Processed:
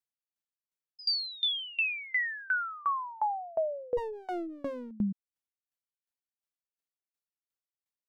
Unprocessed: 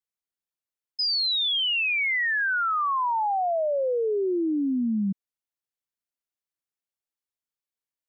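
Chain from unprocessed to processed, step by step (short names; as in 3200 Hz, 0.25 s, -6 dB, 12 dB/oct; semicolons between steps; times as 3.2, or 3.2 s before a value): 3.97–4.91 minimum comb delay 9.4 ms; dB-ramp tremolo decaying 2.8 Hz, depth 26 dB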